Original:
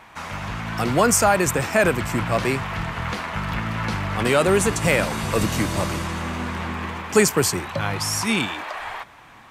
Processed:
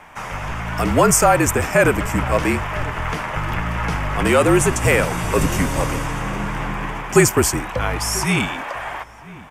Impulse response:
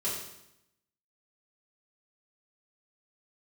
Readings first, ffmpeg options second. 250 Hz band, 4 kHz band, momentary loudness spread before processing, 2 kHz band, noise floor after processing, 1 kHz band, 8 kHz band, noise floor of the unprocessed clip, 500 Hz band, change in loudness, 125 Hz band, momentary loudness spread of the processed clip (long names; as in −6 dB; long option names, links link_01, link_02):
+3.0 dB, −0.5 dB, 12 LU, +3.0 dB, −38 dBFS, +3.5 dB, +3.0 dB, −47 dBFS, +3.0 dB, +3.0 dB, +4.0 dB, 13 LU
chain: -filter_complex "[0:a]afreqshift=-45,equalizer=frequency=4100:width=3.5:gain=-11.5,asplit=2[link_01][link_02];[link_02]adelay=991.3,volume=-19dB,highshelf=frequency=4000:gain=-22.3[link_03];[link_01][link_03]amix=inputs=2:normalize=0,volume=3.5dB"